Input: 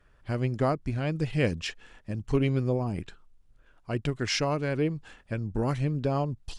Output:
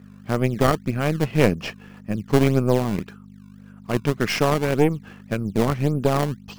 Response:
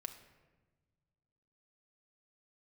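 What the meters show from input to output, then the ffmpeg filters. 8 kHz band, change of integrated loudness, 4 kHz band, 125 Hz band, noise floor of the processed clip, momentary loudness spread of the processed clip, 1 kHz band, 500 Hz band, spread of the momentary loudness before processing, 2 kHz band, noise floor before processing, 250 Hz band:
+5.5 dB, +7.0 dB, +4.0 dB, +5.5 dB, -45 dBFS, 11 LU, +8.5 dB, +8.5 dB, 10 LU, +7.5 dB, -61 dBFS, +8.0 dB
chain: -filter_complex "[0:a]aeval=exprs='val(0)+0.00631*(sin(2*PI*50*n/s)+sin(2*PI*2*50*n/s)/2+sin(2*PI*3*50*n/s)/3+sin(2*PI*4*50*n/s)/4+sin(2*PI*5*50*n/s)/5)':c=same,highpass=130,equalizer=f=200:t=q:w=4:g=7,equalizer=f=440:t=q:w=4:g=4,equalizer=f=1.2k:t=q:w=4:g=7,equalizer=f=2.5k:t=q:w=4:g=3,equalizer=f=3.8k:t=q:w=4:g=-8,lowpass=f=5.8k:w=0.5412,lowpass=f=5.8k:w=1.3066,asplit=2[a][b];[b]acrusher=samples=20:mix=1:aa=0.000001:lfo=1:lforange=32:lforate=1.8,volume=-4.5dB[c];[a][c]amix=inputs=2:normalize=0,aeval=exprs='0.501*(cos(1*acos(clip(val(0)/0.501,-1,1)))-cos(1*PI/2))+0.126*(cos(2*acos(clip(val(0)/0.501,-1,1)))-cos(2*PI/2))+0.0355*(cos(6*acos(clip(val(0)/0.501,-1,1)))-cos(6*PI/2))':c=same,volume=1.5dB"

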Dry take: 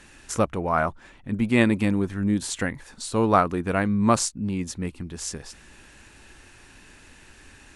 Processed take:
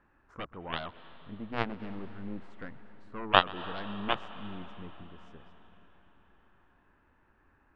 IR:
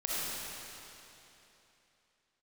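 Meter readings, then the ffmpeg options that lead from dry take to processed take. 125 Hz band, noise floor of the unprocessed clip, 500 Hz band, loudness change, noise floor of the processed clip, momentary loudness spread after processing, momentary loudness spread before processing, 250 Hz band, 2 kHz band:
-17.0 dB, -51 dBFS, -12.0 dB, -9.0 dB, -68 dBFS, 23 LU, 13 LU, -17.5 dB, -6.0 dB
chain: -filter_complex "[0:a]lowpass=f=1.2k:t=q:w=2,aeval=exprs='0.891*(cos(1*acos(clip(val(0)/0.891,-1,1)))-cos(1*PI/2))+0.355*(cos(3*acos(clip(val(0)/0.891,-1,1)))-cos(3*PI/2))+0.0355*(cos(4*acos(clip(val(0)/0.891,-1,1)))-cos(4*PI/2))':c=same,asplit=2[a][b];[1:a]atrim=start_sample=2205,asetrate=30870,aresample=44100,adelay=128[c];[b][c]afir=irnorm=-1:irlink=0,volume=-24dB[d];[a][d]amix=inputs=2:normalize=0,volume=-2dB"

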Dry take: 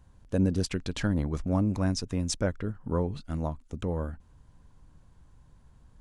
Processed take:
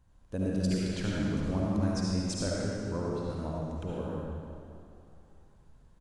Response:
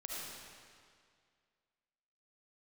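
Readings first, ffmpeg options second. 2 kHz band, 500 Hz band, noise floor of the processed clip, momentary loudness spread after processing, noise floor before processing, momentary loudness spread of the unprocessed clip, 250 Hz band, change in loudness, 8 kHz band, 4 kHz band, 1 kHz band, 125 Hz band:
-2.0 dB, -1.5 dB, -60 dBFS, 12 LU, -59 dBFS, 8 LU, -1.5 dB, -2.5 dB, -2.5 dB, -2.0 dB, -2.0 dB, -3.0 dB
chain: -filter_complex "[0:a]asplit=6[a][b][c][d][e][f];[b]adelay=250,afreqshift=65,volume=-20.5dB[g];[c]adelay=500,afreqshift=130,volume=-24.5dB[h];[d]adelay=750,afreqshift=195,volume=-28.5dB[i];[e]adelay=1000,afreqshift=260,volume=-32.5dB[j];[f]adelay=1250,afreqshift=325,volume=-36.6dB[k];[a][g][h][i][j][k]amix=inputs=6:normalize=0[l];[1:a]atrim=start_sample=2205[m];[l][m]afir=irnorm=-1:irlink=0,volume=-2dB"

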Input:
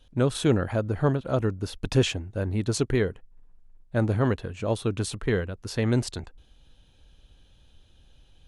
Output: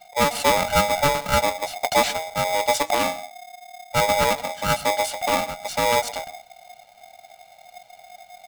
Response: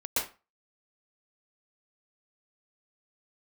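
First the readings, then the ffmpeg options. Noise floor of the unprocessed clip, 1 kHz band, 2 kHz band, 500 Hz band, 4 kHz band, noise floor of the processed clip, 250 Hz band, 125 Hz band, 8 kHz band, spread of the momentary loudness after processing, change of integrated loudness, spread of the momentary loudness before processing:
-58 dBFS, +17.0 dB, +11.0 dB, +4.5 dB, +10.0 dB, -52 dBFS, -5.5 dB, -8.5 dB, +10.5 dB, 14 LU, +5.0 dB, 7 LU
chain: -filter_complex "[0:a]aecho=1:1:1.4:0.79,flanger=delay=1.9:depth=9.5:regen=76:speed=0.49:shape=triangular,asplit=2[a][b];[b]lowshelf=f=190:g=9.5[c];[1:a]atrim=start_sample=2205[d];[c][d]afir=irnorm=-1:irlink=0,volume=-29dB[e];[a][e]amix=inputs=2:normalize=0,aeval=exprs='val(0)*sgn(sin(2*PI*720*n/s))':c=same,volume=6dB"

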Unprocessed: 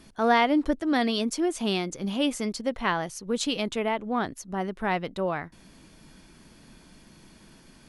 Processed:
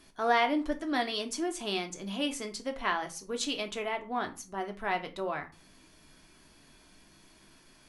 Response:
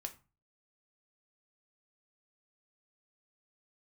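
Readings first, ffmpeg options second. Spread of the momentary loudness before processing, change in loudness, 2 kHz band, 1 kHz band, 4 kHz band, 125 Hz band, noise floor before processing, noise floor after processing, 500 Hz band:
8 LU, -5.5 dB, -3.0 dB, -4.0 dB, -3.0 dB, -11.5 dB, -54 dBFS, -60 dBFS, -5.5 dB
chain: -filter_complex "[0:a]lowshelf=f=480:g=-7[a];[1:a]atrim=start_sample=2205[b];[a][b]afir=irnorm=-1:irlink=0"

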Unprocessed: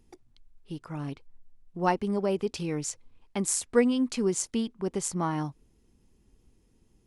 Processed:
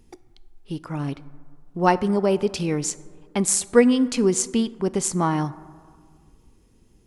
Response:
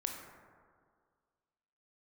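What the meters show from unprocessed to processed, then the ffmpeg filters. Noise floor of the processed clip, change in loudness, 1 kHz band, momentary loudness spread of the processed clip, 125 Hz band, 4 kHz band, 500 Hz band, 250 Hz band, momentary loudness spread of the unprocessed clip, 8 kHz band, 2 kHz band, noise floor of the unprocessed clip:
-57 dBFS, +7.0 dB, +7.0 dB, 15 LU, +7.0 dB, +7.0 dB, +7.5 dB, +7.0 dB, 15 LU, +7.0 dB, +7.0 dB, -66 dBFS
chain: -filter_complex "[0:a]asplit=2[a][b];[1:a]atrim=start_sample=2205[c];[b][c]afir=irnorm=-1:irlink=0,volume=-12dB[d];[a][d]amix=inputs=2:normalize=0,volume=5.5dB"

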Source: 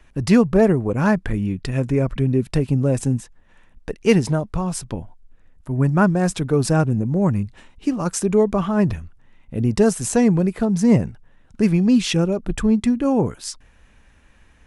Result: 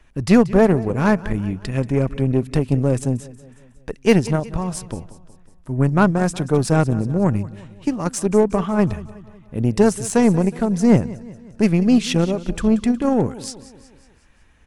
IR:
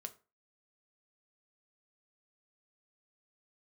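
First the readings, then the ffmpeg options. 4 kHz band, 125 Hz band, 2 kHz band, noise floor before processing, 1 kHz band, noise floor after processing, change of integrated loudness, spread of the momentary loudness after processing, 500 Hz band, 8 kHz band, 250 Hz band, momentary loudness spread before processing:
-0.5 dB, 0.0 dB, +1.0 dB, -53 dBFS, +2.0 dB, -51 dBFS, +0.5 dB, 14 LU, +1.0 dB, -1.0 dB, +0.5 dB, 10 LU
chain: -af "aecho=1:1:183|366|549|732|915:0.158|0.084|0.0445|0.0236|0.0125,aeval=exprs='0.75*(cos(1*acos(clip(val(0)/0.75,-1,1)))-cos(1*PI/2))+0.0335*(cos(4*acos(clip(val(0)/0.75,-1,1)))-cos(4*PI/2))+0.0299*(cos(7*acos(clip(val(0)/0.75,-1,1)))-cos(7*PI/2))':c=same,volume=1dB"

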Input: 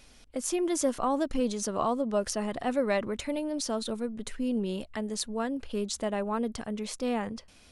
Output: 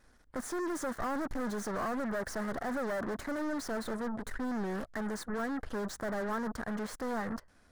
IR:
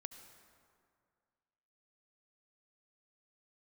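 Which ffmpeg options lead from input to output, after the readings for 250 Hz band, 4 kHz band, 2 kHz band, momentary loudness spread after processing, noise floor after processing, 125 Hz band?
-5.0 dB, -10.5 dB, +1.5 dB, 4 LU, -63 dBFS, -3.0 dB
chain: -af "volume=31.5dB,asoftclip=hard,volume=-31.5dB,aeval=exprs='0.0282*(cos(1*acos(clip(val(0)/0.0282,-1,1)))-cos(1*PI/2))+0.001*(cos(5*acos(clip(val(0)/0.0282,-1,1)))-cos(5*PI/2))+0.00224*(cos(6*acos(clip(val(0)/0.0282,-1,1)))-cos(6*PI/2))+0.00708*(cos(7*acos(clip(val(0)/0.0282,-1,1)))-cos(7*PI/2))':c=same,highshelf=f=2.1k:t=q:w=3:g=-7"

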